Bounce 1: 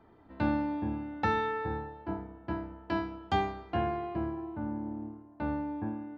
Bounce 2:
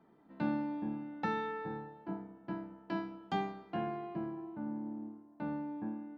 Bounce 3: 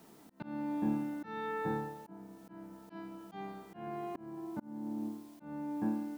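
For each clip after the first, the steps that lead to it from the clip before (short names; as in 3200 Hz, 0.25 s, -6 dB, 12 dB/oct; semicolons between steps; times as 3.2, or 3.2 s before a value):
resonant low shelf 120 Hz -11.5 dB, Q 3; gain -7 dB
requantised 12-bit, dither triangular; auto swell 0.472 s; gain +6.5 dB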